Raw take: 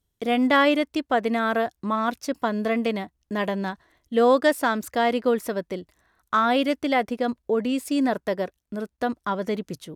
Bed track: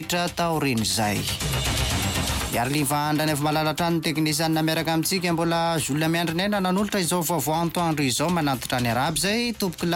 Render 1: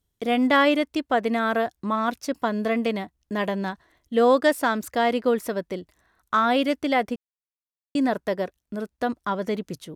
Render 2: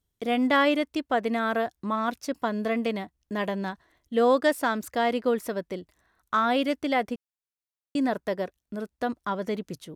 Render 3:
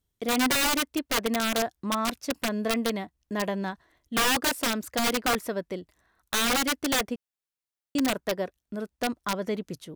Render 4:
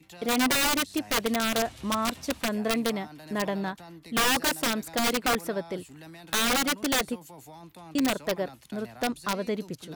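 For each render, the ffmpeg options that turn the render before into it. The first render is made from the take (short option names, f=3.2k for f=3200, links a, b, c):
-filter_complex "[0:a]asplit=3[a][b][c];[a]atrim=end=7.16,asetpts=PTS-STARTPTS,afade=t=out:st=7.156:d=0.004:c=hsin[d];[b]atrim=start=7.16:end=7.95,asetpts=PTS-STARTPTS,volume=0[e];[c]atrim=start=7.95,asetpts=PTS-STARTPTS,afade=t=in:d=0.004:c=hsin[f];[d][e][f]concat=n=3:v=0:a=1"
-af "volume=-3dB"
-af "aeval=exprs='(mod(8.91*val(0)+1,2)-1)/8.91':c=same"
-filter_complex "[1:a]volume=-23.5dB[a];[0:a][a]amix=inputs=2:normalize=0"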